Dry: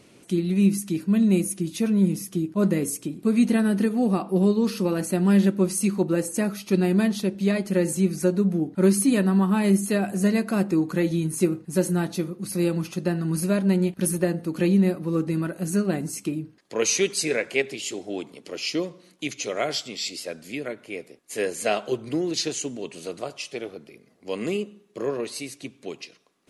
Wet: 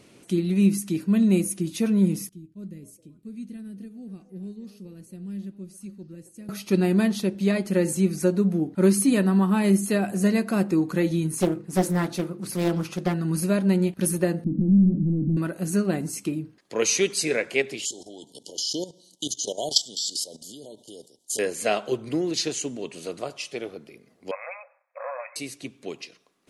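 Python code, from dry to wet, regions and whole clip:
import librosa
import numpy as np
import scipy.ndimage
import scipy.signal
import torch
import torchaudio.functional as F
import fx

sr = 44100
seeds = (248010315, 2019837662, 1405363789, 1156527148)

y = fx.chain(x, sr, fx.tone_stack(knobs='10-0-1'),
    fx.echo_stepped(ms=266, hz=640.0, octaves=0.7, feedback_pct=70, wet_db=-8), at=(2.29, 6.49))
y = fx.chain(y, sr, fx.peak_eq(hz=1200.0, db=3.5, octaves=1.7),
    fx.hum_notches(base_hz=50, count=10),
    fx.doppler_dist(depth_ms=0.54), at=(11.37, 13.14))
y = fx.chain(y, sr, fx.leveller(passes=5),
    fx.ladder_lowpass(hz=260.0, resonance_pct=50), at=(14.44, 15.37))
y = fx.chain(y, sr, fx.brickwall_bandstop(low_hz=980.0, high_hz=2900.0),
    fx.peak_eq(hz=7100.0, db=15.0, octaves=2.4),
    fx.level_steps(step_db=14), at=(17.85, 21.39))
y = fx.chain(y, sr, fx.leveller(passes=1),
    fx.brickwall_bandpass(low_hz=510.0, high_hz=2600.0), at=(24.31, 25.36))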